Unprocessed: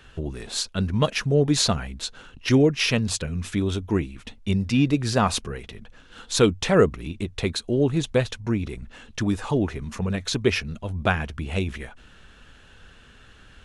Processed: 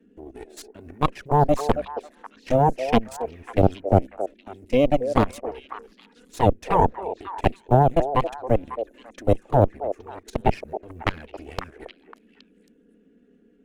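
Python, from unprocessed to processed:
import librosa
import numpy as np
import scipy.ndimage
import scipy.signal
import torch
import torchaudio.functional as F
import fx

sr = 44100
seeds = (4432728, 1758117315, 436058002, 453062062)

y = fx.law_mismatch(x, sr, coded='A')
y = fx.graphic_eq(y, sr, hz=(125, 250, 500, 1000, 2000, 4000), db=(-8, 10, 11, -8, 6, -9))
y = fx.level_steps(y, sr, step_db=16)
y = fx.dmg_noise_band(y, sr, seeds[0], low_hz=180.0, high_hz=420.0, level_db=-50.0)
y = fx.env_flanger(y, sr, rest_ms=4.5, full_db=-14.5)
y = fx.cheby_harmonics(y, sr, harmonics=(3, 4, 5), levels_db=(-10, -6, -23), full_scale_db=-4.0)
y = fx.echo_stepped(y, sr, ms=273, hz=510.0, octaves=1.4, feedback_pct=70, wet_db=-6.5)
y = y * 10.0 ** (2.5 / 20.0)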